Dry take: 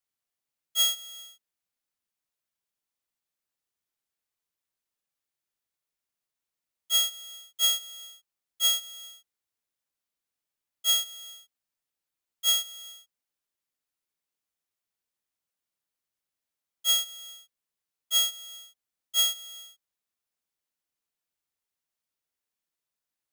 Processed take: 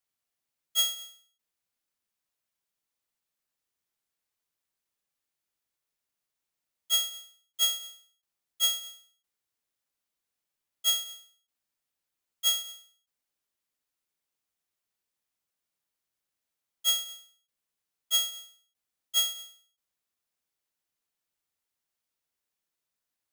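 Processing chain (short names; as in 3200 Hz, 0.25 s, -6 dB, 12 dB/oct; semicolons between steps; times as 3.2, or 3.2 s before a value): ending taper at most 120 dB/s; gain +1.5 dB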